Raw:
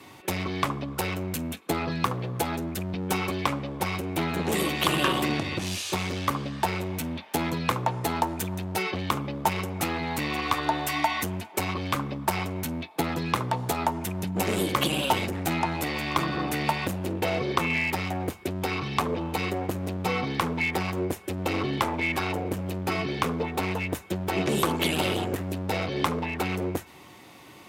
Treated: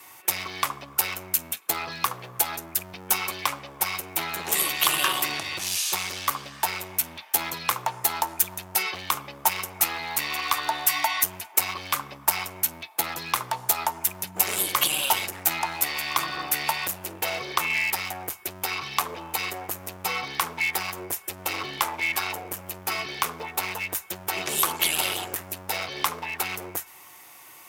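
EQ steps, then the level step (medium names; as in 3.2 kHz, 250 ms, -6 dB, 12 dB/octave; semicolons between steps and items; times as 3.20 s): tone controls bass -15 dB, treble +14 dB; dynamic bell 4 kHz, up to +7 dB, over -42 dBFS, Q 1.4; graphic EQ 250/500/4000/8000 Hz -10/-8/-11/-6 dB; +2.5 dB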